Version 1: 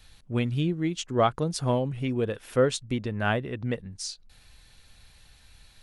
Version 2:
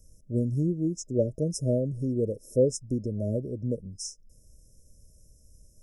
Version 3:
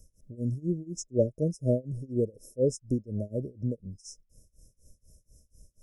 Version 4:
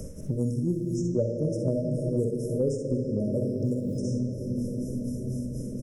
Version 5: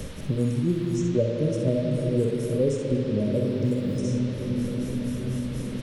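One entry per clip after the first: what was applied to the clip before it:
FFT band-reject 640–5100 Hz
tremolo 4.1 Hz, depth 96%; trim +1.5 dB
on a send: early reflections 46 ms -8 dB, 61 ms -7.5 dB; on the sum: simulated room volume 210 m³, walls hard, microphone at 0.31 m; three bands compressed up and down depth 100%
band noise 350–4000 Hz -52 dBFS; trim +3 dB

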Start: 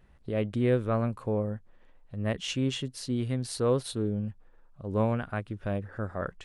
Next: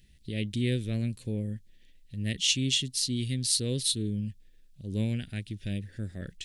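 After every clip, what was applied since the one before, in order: FFT filter 190 Hz 0 dB, 340 Hz -4 dB, 1.2 kHz -30 dB, 1.8 kHz -2 dB, 3.7 kHz +12 dB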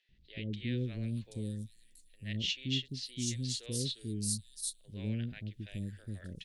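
three bands offset in time mids, lows, highs 90/780 ms, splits 570/4900 Hz; trim -6 dB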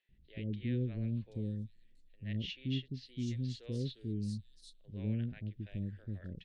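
tape spacing loss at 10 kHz 32 dB; trim +1 dB

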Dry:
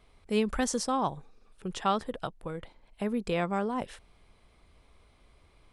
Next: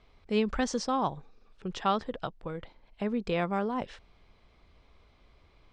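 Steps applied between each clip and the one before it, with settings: low-pass 6 kHz 24 dB/octave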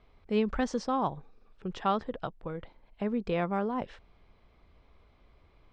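treble shelf 3.6 kHz -10.5 dB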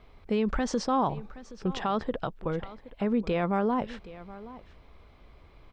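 peak limiter -25.5 dBFS, peak gain reduction 10 dB; delay 772 ms -17.5 dB; trim +7 dB

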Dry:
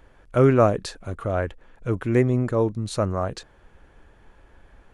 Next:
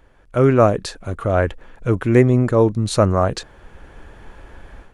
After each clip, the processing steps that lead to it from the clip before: level rider gain up to 12 dB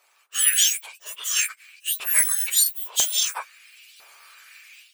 spectrum inverted on a logarithmic axis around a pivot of 2 kHz; LFO high-pass saw up 1 Hz 740–3600 Hz; trim +1 dB

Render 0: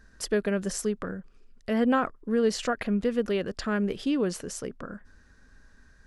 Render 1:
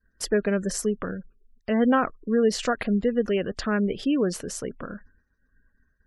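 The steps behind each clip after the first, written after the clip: expander -44 dBFS; spectral gate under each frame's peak -30 dB strong; trim +3 dB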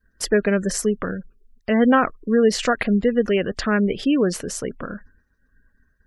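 dynamic bell 2.1 kHz, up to +4 dB, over -47 dBFS, Q 2; trim +4.5 dB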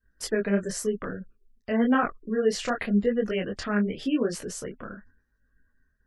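detune thickener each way 32 cents; trim -3.5 dB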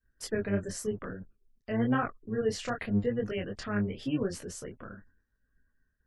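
octave divider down 1 oct, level -5 dB; trim -6 dB

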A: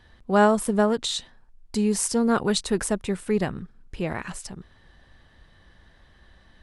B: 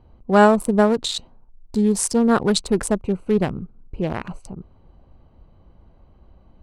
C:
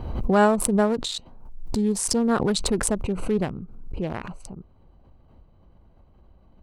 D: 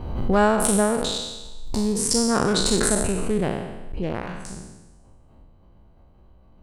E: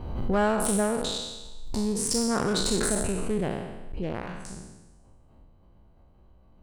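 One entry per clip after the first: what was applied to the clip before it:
local Wiener filter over 25 samples; trim +5 dB
swell ahead of each attack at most 48 dB/s; trim -5 dB
spectral sustain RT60 1.09 s; trim -1 dB
saturation -11 dBFS, distortion -19 dB; trim -4 dB

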